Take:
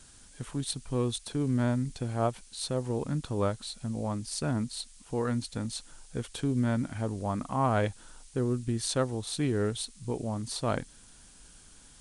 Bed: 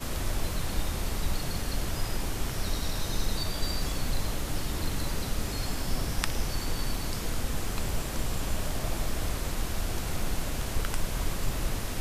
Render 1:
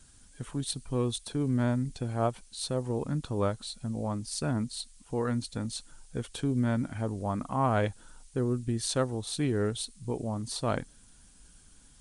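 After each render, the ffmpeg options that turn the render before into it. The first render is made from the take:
-af "afftdn=nr=6:nf=-55"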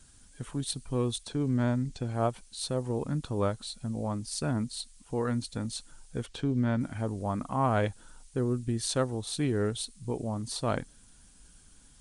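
-filter_complex "[0:a]asettb=1/sr,asplit=3[a][b][c];[a]atrim=end=1.234[d];[b]atrim=start=1.23:end=2.14,asetpts=PTS-STARTPTS,afade=t=in:d=0.004:c=qsin,afade=t=out:st=0.906:d=0.004:c=qsin,lowpass=f=8.5k:w=0.5412,lowpass=f=8.5k:w=1.3066[e];[c]atrim=start=2.136[f];[d][e]acrossfade=d=0.004:c1=hsin:c2=qsin[g];[g][f]acrossfade=d=0.004:c1=qsin:c2=hsin,asettb=1/sr,asplit=3[h][i][j];[h]atrim=end=6.264[k];[i]atrim=start=6.26:end=6.81,asetpts=PTS-STARTPTS,afade=t=in:d=0.004:c=qsin,afade=t=out:st=0.546:d=0.004:c=qsin,lowpass=5.3k[l];[j]atrim=start=6.806[m];[k][l]acrossfade=d=0.004:c1=hsin:c2=qsin[n];[n][m]acrossfade=d=0.004:c1=qsin:c2=hsin"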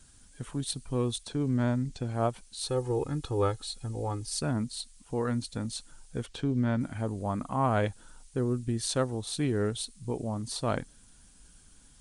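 -filter_complex "[0:a]asettb=1/sr,asplit=3[a][b][c];[a]atrim=end=2.664[d];[b]atrim=start=2.66:end=4.41,asetpts=PTS-STARTPTS,afade=t=in:d=0.004:c=qsin,afade=t=out:st=1.746:d=0.004:c=qsin,aecho=1:1:2.4:0.73,atrim=end_sample=77175[e];[c]atrim=start=4.406[f];[d][e]acrossfade=d=0.004:c1=hsin:c2=qsin[g];[g][f]acrossfade=d=0.004:c1=qsin:c2=hsin,asettb=1/sr,asplit=3[h][i][j];[h]atrim=end=6.844[k];[i]atrim=start=6.84:end=7.86,asetpts=PTS-STARTPTS,afade=t=in:d=0.004:c=qsin,afade=t=out:st=1.016:d=0.004:c=qsin,bandreject=f=5.5k:w=12[l];[j]atrim=start=7.856[m];[k][l]acrossfade=d=0.004:c1=hsin:c2=qsin[n];[n][m]acrossfade=d=0.004:c1=qsin:c2=hsin"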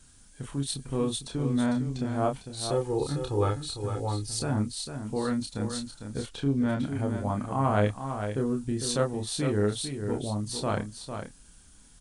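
-filter_complex "[0:a]asplit=2[a][b];[b]adelay=29,volume=-4.5dB[c];[a][c]amix=inputs=2:normalize=0,asplit=2[d][e];[e]aecho=0:1:452:0.398[f];[d][f]amix=inputs=2:normalize=0"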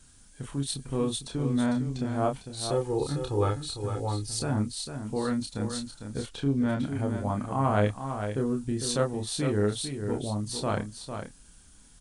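-af anull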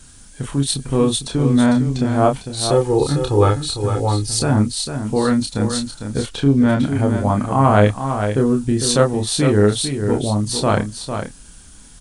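-af "volume=12dB,alimiter=limit=-2dB:level=0:latency=1"

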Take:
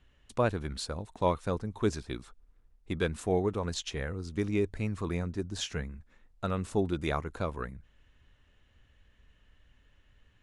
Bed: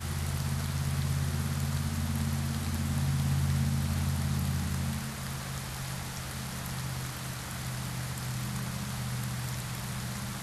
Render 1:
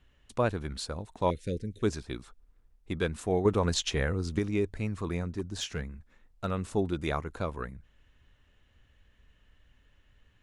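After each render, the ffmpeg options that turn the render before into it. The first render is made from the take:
-filter_complex "[0:a]asettb=1/sr,asplit=3[a][b][c];[a]atrim=end=1.304[d];[b]atrim=start=1.3:end=1.83,asetpts=PTS-STARTPTS,afade=t=in:d=0.004:c=qsin,afade=t=out:st=0.526:d=0.004:c=qsin,asuperstop=centerf=970:order=8:qfactor=0.75[e];[c]atrim=start=1.826[f];[d][e]acrossfade=d=0.004:c1=hsin:c2=qsin[g];[g][f]acrossfade=d=0.004:c1=qsin:c2=hsin,asettb=1/sr,asplit=3[h][i][j];[h]atrim=end=3.454[k];[i]atrim=start=3.45:end=4.39,asetpts=PTS-STARTPTS,afade=t=in:d=0.004:c=qsin,afade=t=out:st=0.936:d=0.004:c=qsin,acontrast=58[l];[j]atrim=start=4.386[m];[k][l]acrossfade=d=0.004:c1=hsin:c2=qsin[n];[n][m]acrossfade=d=0.004:c1=qsin:c2=hsin,asettb=1/sr,asplit=3[o][p][q];[o]atrim=end=5.354[r];[p]atrim=start=5.35:end=6.45,asetpts=PTS-STARTPTS,afade=t=in:d=0.004:c=qsin,afade=t=out:st=1.096:d=0.004:c=qsin,volume=26dB,asoftclip=hard,volume=-26dB[s];[q]atrim=start=6.446[t];[r][s]acrossfade=d=0.004:c1=hsin:c2=qsin[u];[u][t]acrossfade=d=0.004:c1=qsin:c2=hsin"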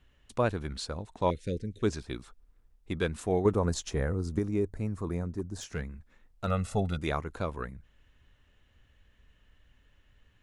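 -filter_complex "[0:a]asettb=1/sr,asplit=3[a][b][c];[a]atrim=end=0.774[d];[b]atrim=start=0.77:end=1.99,asetpts=PTS-STARTPTS,afade=t=in:d=0.004:c=qsin,afade=t=out:st=1.216:d=0.004:c=qsin,lowpass=9.3k[e];[c]atrim=start=1.986[f];[d][e]acrossfade=d=0.004:c1=hsin:c2=qsin[g];[g][f]acrossfade=d=0.004:c1=qsin:c2=hsin,asettb=1/sr,asplit=3[h][i][j];[h]atrim=end=3.524[k];[i]atrim=start=3.52:end=5.73,asetpts=PTS-STARTPTS,afade=t=in:d=0.004:c=qsin,afade=t=out:st=2.206:d=0.004:c=qsin,equalizer=f=3k:w=0.82:g=-12.5[l];[j]atrim=start=5.726[m];[k][l]acrossfade=d=0.004:c1=hsin:c2=qsin[n];[n][m]acrossfade=d=0.004:c1=qsin:c2=hsin,asettb=1/sr,asplit=3[o][p][q];[o]atrim=end=6.474[r];[p]atrim=start=6.47:end=6.99,asetpts=PTS-STARTPTS,afade=t=in:d=0.004:c=qsin,afade=t=out:st=0.516:d=0.004:c=qsin,aecho=1:1:1.5:0.9,atrim=end_sample=22932[s];[q]atrim=start=6.986[t];[r][s]acrossfade=d=0.004:c1=hsin:c2=qsin[u];[u][t]acrossfade=d=0.004:c1=qsin:c2=hsin"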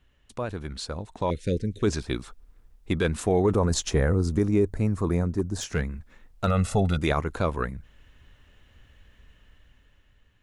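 -af "alimiter=limit=-21.5dB:level=0:latency=1:release=22,dynaudnorm=f=340:g=7:m=8.5dB"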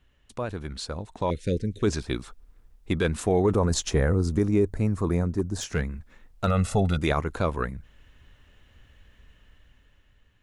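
-af anull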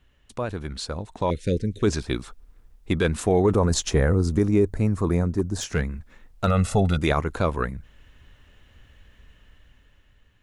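-af "volume=2.5dB"

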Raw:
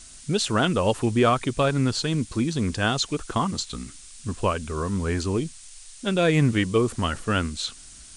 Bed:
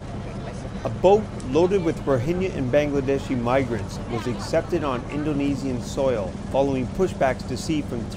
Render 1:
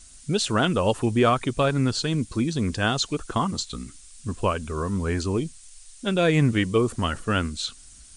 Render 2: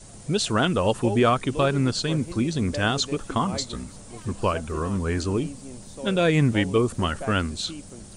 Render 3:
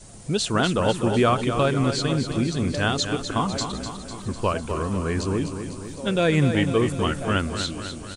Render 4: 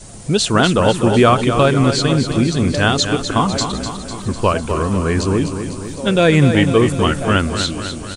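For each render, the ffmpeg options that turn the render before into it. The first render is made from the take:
-af "afftdn=nr=6:nf=-46"
-filter_complex "[1:a]volume=-14.5dB[a];[0:a][a]amix=inputs=2:normalize=0"
-af "aecho=1:1:250|500|750|1000|1250|1500|1750:0.376|0.222|0.131|0.0772|0.0455|0.0269|0.0159"
-af "volume=8dB,alimiter=limit=-1dB:level=0:latency=1"

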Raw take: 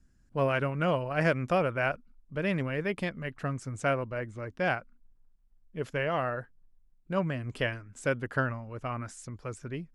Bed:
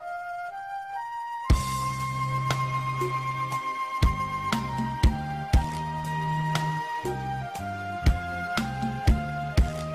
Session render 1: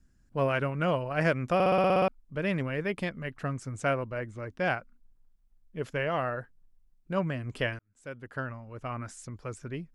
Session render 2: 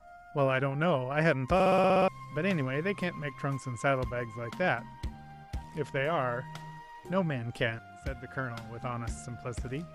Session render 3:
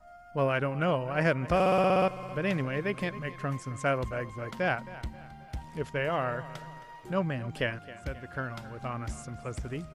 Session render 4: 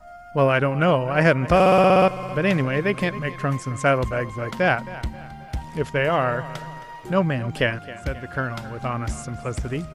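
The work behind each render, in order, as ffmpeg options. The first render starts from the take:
-filter_complex "[0:a]asplit=11[a][b][c][d][e][f][g][h][i][j][k];[a]atrim=end=1.602[l];[b]atrim=start=1.538:end=1.602[m];[c]atrim=start=1.538:end=1.602[n];[d]atrim=start=1.538:end=1.602[o];[e]atrim=start=1.538:end=1.602[p];[f]atrim=start=1.538:end=1.602[q];[g]atrim=start=1.538:end=1.602[r];[h]atrim=start=1.538:end=1.602[s];[i]atrim=start=1.538:end=1.602[t];[j]atrim=start=2.078:end=7.79,asetpts=PTS-STARTPTS,afade=t=out:st=5.708:d=0.004:c=hsin[u];[k]atrim=start=7.79,asetpts=PTS-STARTPTS,afade=t=in:d=1.29[v];[l][m]acrossfade=d=0.004:c1=hsin:c2=hsin[w];[w][n]acrossfade=d=0.004:c1=hsin:c2=hsin[x];[x][o]acrossfade=d=0.004:c1=hsin:c2=hsin[y];[y][p]acrossfade=d=0.004:c1=hsin:c2=hsin[z];[z][q]acrossfade=d=0.004:c1=hsin:c2=hsin[aa];[aa][r]acrossfade=d=0.004:c1=hsin:c2=hsin[ab];[ab][s]acrossfade=d=0.004:c1=hsin:c2=hsin[ac];[ac][t]acrossfade=d=0.004:c1=hsin:c2=hsin[ad];[u][v]concat=n=2:v=0:a=1[ae];[ad][ae]acrossfade=d=0.004:c1=hsin:c2=hsin"
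-filter_complex "[1:a]volume=-17dB[a];[0:a][a]amix=inputs=2:normalize=0"
-af "aecho=1:1:267|534|801|1068:0.141|0.0607|0.0261|0.0112"
-af "volume=9dB"

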